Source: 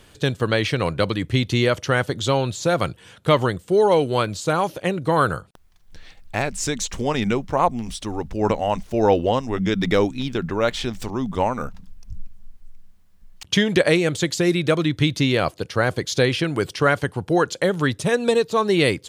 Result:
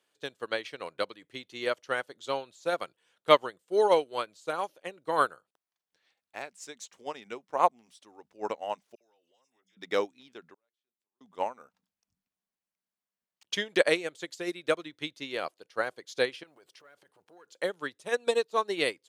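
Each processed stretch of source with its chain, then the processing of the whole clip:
8.95–9.77 s: pre-emphasis filter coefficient 0.9 + compression 12:1, threshold -41 dBFS + phase dispersion lows, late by 58 ms, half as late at 2.4 kHz
10.54–11.21 s: hum notches 50/100/150/200/250/300/350/400/450/500 Hz + inverted gate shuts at -25 dBFS, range -40 dB
16.43–17.59 s: block-companded coder 7-bit + compression 16:1, threshold -24 dBFS + transformer saturation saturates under 540 Hz
whole clip: high-pass 400 Hz 12 dB/octave; upward expansion 2.5:1, over -29 dBFS

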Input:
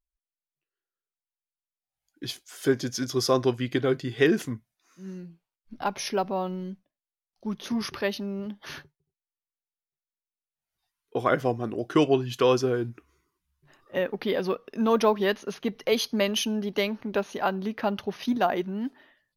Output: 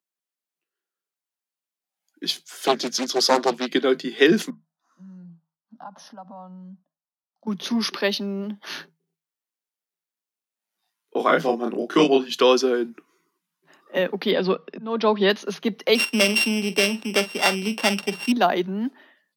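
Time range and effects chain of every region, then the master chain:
2.47–3.68 s: peaking EQ 87 Hz -7.5 dB 0.91 oct + loudspeaker Doppler distortion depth 0.96 ms
4.50–7.47 s: low-pass 1.3 kHz 6 dB/octave + compression 3:1, threshold -42 dBFS + static phaser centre 950 Hz, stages 4
8.59–12.29 s: doubling 30 ms -3 dB + AM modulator 110 Hz, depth 25%
14.31–15.30 s: bass shelf 160 Hz +6 dB + slow attack 427 ms + steep low-pass 5.1 kHz 48 dB/octave
15.95–18.32 s: sorted samples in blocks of 16 samples + doubling 45 ms -14 dB + decimation joined by straight lines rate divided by 2×
whole clip: Chebyshev high-pass 160 Hz, order 10; dynamic bell 4 kHz, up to +8 dB, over -49 dBFS, Q 1.4; trim +5 dB

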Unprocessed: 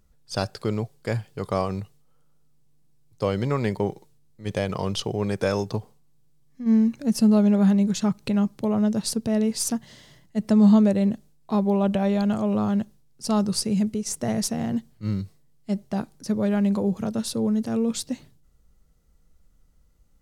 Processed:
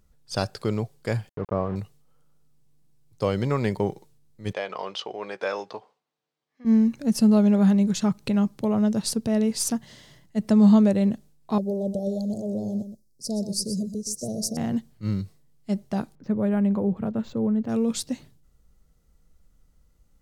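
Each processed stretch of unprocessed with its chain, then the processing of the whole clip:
1.29–1.76 s: peaking EQ 770 Hz -4.5 dB 0.43 oct + word length cut 6-bit, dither none + low-pass 1.1 kHz
4.53–6.65 s: band-pass 580–3500 Hz + doubling 16 ms -13.5 dB
11.58–14.57 s: elliptic band-stop 580–4900 Hz, stop band 50 dB + bass shelf 410 Hz -6.5 dB + delay 123 ms -10.5 dB
16.15–17.69 s: distance through air 360 m + decimation joined by straight lines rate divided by 4×
whole clip: none

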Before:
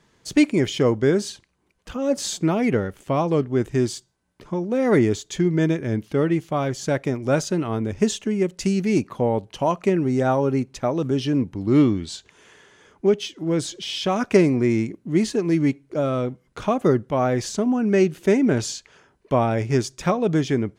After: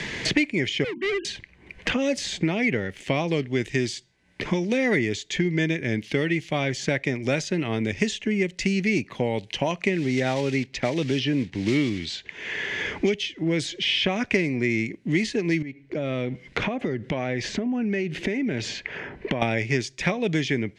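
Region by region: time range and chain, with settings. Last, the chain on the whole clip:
0.84–1.25 s: formants replaced by sine waves + hard clipper -24.5 dBFS + hum notches 50/100/150/200/250/300/350 Hz
9.92–13.05 s: block-companded coder 5-bit + low-pass 6.4 kHz
15.62–19.42 s: low-pass 1.5 kHz 6 dB/octave + compression, threshold -32 dBFS
whole clip: Bessel low-pass 4.7 kHz, order 2; resonant high shelf 1.6 kHz +7.5 dB, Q 3; three bands compressed up and down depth 100%; trim -4 dB

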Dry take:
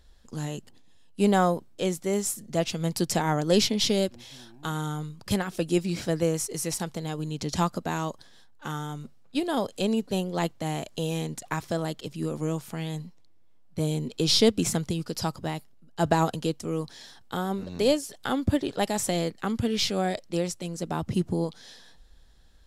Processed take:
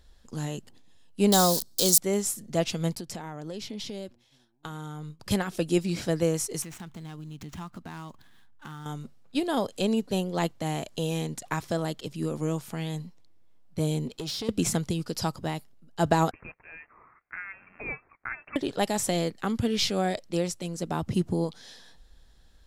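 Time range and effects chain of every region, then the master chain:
1.32–1.98 s: zero-crossing glitches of -25.5 dBFS + resonant high shelf 3.3 kHz +11 dB, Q 3
2.95–5.20 s: expander -36 dBFS + peaking EQ 13 kHz -4 dB 2.5 oct + compression 12:1, threshold -33 dBFS
6.62–8.86 s: median filter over 9 samples + peaking EQ 520 Hz -12.5 dB 0.88 oct + compression 3:1, threshold -39 dBFS
14.07–14.49 s: compression 12:1, threshold -26 dBFS + valve stage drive 28 dB, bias 0.35
16.31–18.56 s: block-companded coder 5-bit + high-pass 1.2 kHz + frequency inversion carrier 2.9 kHz
whole clip: none

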